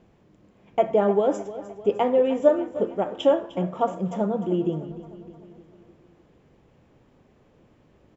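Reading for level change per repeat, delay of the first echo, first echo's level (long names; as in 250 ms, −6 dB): −5.0 dB, 304 ms, −15.0 dB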